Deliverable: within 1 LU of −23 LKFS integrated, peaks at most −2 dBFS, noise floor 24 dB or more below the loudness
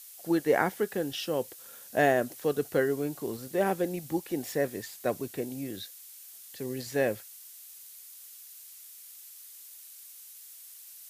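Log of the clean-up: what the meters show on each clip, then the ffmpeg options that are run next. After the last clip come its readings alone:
background noise floor −49 dBFS; target noise floor −55 dBFS; integrated loudness −30.5 LKFS; sample peak −10.0 dBFS; target loudness −23.0 LKFS
→ -af "afftdn=noise_reduction=6:noise_floor=-49"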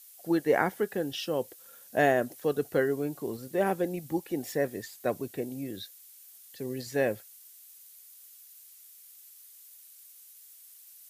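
background noise floor −53 dBFS; target noise floor −55 dBFS
→ -af "afftdn=noise_reduction=6:noise_floor=-53"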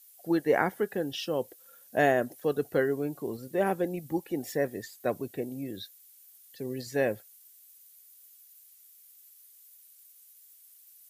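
background noise floor −57 dBFS; integrated loudness −30.5 LKFS; sample peak −10.0 dBFS; target loudness −23.0 LKFS
→ -af "volume=7.5dB"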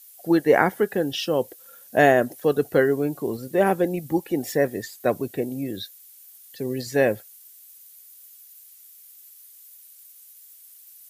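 integrated loudness −23.0 LKFS; sample peak −2.5 dBFS; background noise floor −49 dBFS

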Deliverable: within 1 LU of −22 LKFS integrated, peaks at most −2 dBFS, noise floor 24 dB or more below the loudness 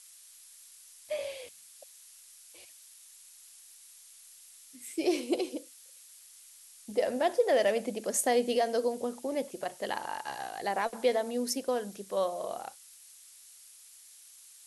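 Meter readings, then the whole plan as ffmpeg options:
background noise floor −55 dBFS; target noise floor −56 dBFS; integrated loudness −31.5 LKFS; sample peak −15.0 dBFS; target loudness −22.0 LKFS
→ -af "afftdn=noise_reduction=6:noise_floor=-55"
-af "volume=9.5dB"

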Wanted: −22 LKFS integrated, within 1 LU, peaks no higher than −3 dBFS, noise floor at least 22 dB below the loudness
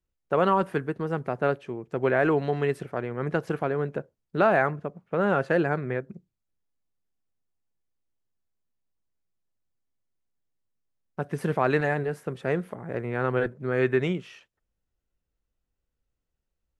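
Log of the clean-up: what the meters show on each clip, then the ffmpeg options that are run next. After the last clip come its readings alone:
integrated loudness −27.0 LKFS; sample peak −9.0 dBFS; target loudness −22.0 LKFS
→ -af "volume=5dB"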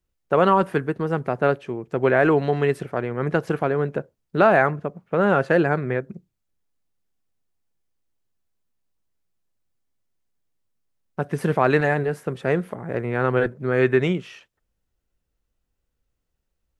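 integrated loudness −22.0 LKFS; sample peak −4.0 dBFS; background noise floor −77 dBFS

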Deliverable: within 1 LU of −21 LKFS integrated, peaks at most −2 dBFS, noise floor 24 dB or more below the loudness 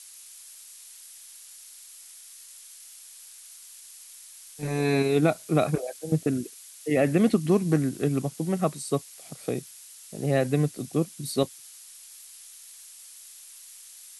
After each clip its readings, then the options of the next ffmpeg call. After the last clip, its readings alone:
background noise floor −48 dBFS; target noise floor −51 dBFS; integrated loudness −26.5 LKFS; sample peak −9.0 dBFS; target loudness −21.0 LKFS
→ -af "afftdn=noise_reduction=6:noise_floor=-48"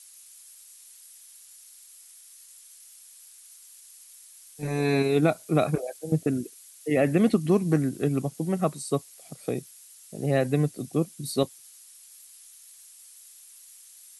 background noise floor −51 dBFS; integrated loudness −26.5 LKFS; sample peak −9.0 dBFS; target loudness −21.0 LKFS
→ -af "volume=5.5dB"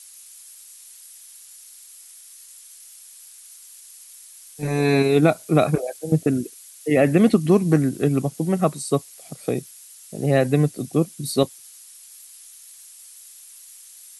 integrated loudness −21.0 LKFS; sample peak −3.5 dBFS; background noise floor −46 dBFS

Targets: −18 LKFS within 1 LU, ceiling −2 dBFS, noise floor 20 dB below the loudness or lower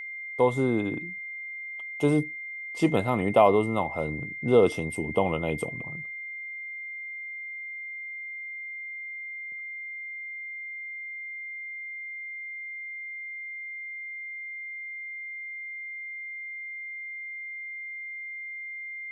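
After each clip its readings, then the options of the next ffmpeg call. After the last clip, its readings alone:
interfering tone 2,100 Hz; level of the tone −35 dBFS; integrated loudness −30.5 LKFS; sample peak −7.0 dBFS; target loudness −18.0 LKFS
→ -af "bandreject=frequency=2100:width=30"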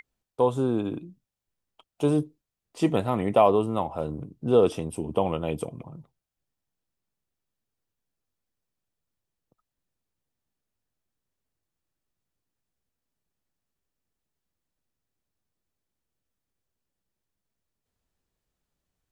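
interfering tone none found; integrated loudness −25.5 LKFS; sample peak −7.0 dBFS; target loudness −18.0 LKFS
→ -af "volume=7.5dB,alimiter=limit=-2dB:level=0:latency=1"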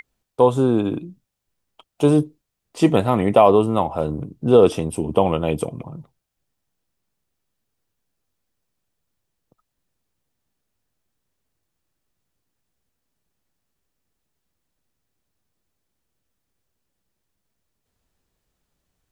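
integrated loudness −18.5 LKFS; sample peak −2.0 dBFS; background noise floor −79 dBFS

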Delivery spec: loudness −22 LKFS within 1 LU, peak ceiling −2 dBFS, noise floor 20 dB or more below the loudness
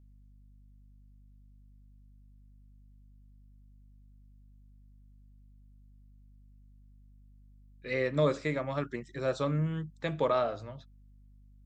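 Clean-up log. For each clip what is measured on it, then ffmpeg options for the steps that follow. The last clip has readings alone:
mains hum 50 Hz; hum harmonics up to 250 Hz; level of the hum −54 dBFS; integrated loudness −32.0 LKFS; sample peak −15.5 dBFS; target loudness −22.0 LKFS
→ -af "bandreject=frequency=50:width_type=h:width=4,bandreject=frequency=100:width_type=h:width=4,bandreject=frequency=150:width_type=h:width=4,bandreject=frequency=200:width_type=h:width=4,bandreject=frequency=250:width_type=h:width=4"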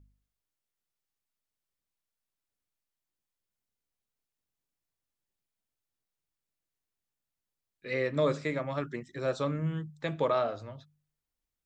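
mains hum none found; integrated loudness −32.0 LKFS; sample peak −16.5 dBFS; target loudness −22.0 LKFS
→ -af "volume=10dB"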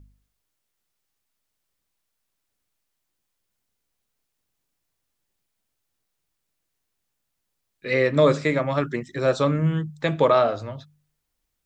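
integrated loudness −22.0 LKFS; sample peak −6.5 dBFS; background noise floor −79 dBFS

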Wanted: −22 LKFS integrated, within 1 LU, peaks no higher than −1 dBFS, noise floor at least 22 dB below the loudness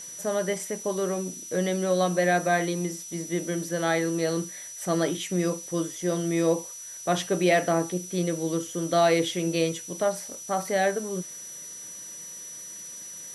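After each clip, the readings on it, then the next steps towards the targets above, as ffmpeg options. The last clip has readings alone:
interfering tone 5,900 Hz; level of the tone −39 dBFS; background noise floor −41 dBFS; target noise floor −49 dBFS; integrated loudness −27.0 LKFS; sample peak −10.5 dBFS; target loudness −22.0 LKFS
→ -af "bandreject=frequency=5900:width=30"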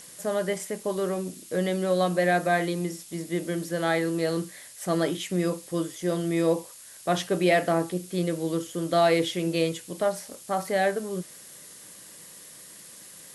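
interfering tone none found; background noise floor −47 dBFS; target noise floor −49 dBFS
→ -af "afftdn=noise_reduction=6:noise_floor=-47"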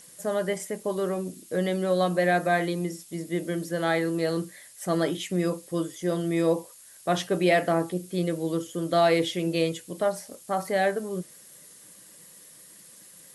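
background noise floor −51 dBFS; integrated loudness −27.0 LKFS; sample peak −10.5 dBFS; target loudness −22.0 LKFS
→ -af "volume=5dB"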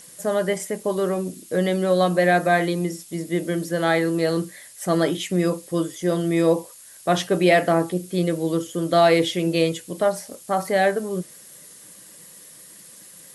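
integrated loudness −22.0 LKFS; sample peak −5.5 dBFS; background noise floor −46 dBFS

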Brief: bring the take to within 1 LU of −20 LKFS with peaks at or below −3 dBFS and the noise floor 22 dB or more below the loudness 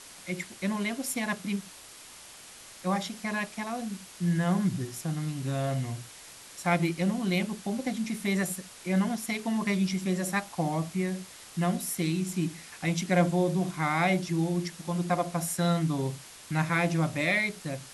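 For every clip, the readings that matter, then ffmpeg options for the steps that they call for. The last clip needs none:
background noise floor −49 dBFS; target noise floor −52 dBFS; integrated loudness −29.5 LKFS; sample peak −12.0 dBFS; target loudness −20.0 LKFS
→ -af "afftdn=noise_reduction=6:noise_floor=-49"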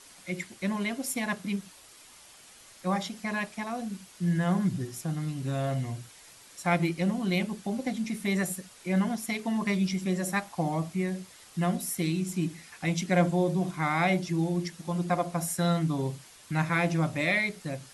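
background noise floor −53 dBFS; integrated loudness −30.0 LKFS; sample peak −12.0 dBFS; target loudness −20.0 LKFS
→ -af "volume=10dB,alimiter=limit=-3dB:level=0:latency=1"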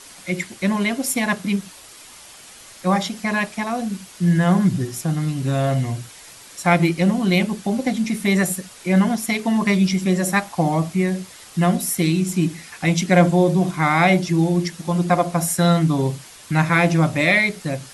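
integrated loudness −20.0 LKFS; sample peak −3.0 dBFS; background noise floor −43 dBFS

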